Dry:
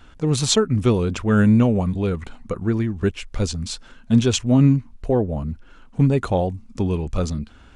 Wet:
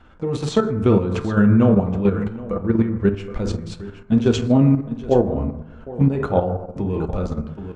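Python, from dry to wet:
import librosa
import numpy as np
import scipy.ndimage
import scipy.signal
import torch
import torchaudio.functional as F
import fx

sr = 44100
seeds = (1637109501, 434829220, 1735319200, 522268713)

y = fx.lowpass(x, sr, hz=1300.0, slope=6)
y = fx.low_shelf(y, sr, hz=170.0, db=-5.0)
y = y + 10.0 ** (-14.5 / 20.0) * np.pad(y, (int(771 * sr / 1000.0), 0))[:len(y)]
y = fx.rev_fdn(y, sr, rt60_s=1.0, lf_ratio=0.95, hf_ratio=0.4, size_ms=89.0, drr_db=3.0)
y = fx.level_steps(y, sr, step_db=9)
y = y * librosa.db_to_amplitude(5.0)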